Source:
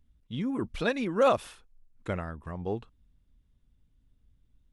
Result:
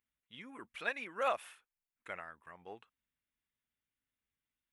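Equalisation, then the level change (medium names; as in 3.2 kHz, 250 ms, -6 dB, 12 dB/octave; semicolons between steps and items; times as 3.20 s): differentiator; resonant high shelf 3.2 kHz -13.5 dB, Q 1.5; dynamic bell 710 Hz, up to +5 dB, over -58 dBFS, Q 2; +6.0 dB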